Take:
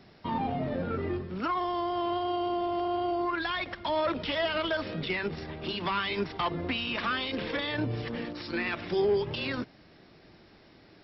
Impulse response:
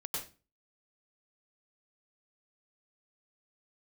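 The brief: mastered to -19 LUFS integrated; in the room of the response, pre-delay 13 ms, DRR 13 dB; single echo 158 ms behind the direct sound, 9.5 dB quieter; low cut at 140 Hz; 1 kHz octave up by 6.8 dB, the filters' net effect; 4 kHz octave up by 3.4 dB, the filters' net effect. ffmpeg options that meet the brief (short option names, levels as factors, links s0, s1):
-filter_complex "[0:a]highpass=140,equalizer=f=1000:t=o:g=8.5,equalizer=f=4000:t=o:g=4,aecho=1:1:158:0.335,asplit=2[s0][s1];[1:a]atrim=start_sample=2205,adelay=13[s2];[s1][s2]afir=irnorm=-1:irlink=0,volume=0.188[s3];[s0][s3]amix=inputs=2:normalize=0,volume=2.37"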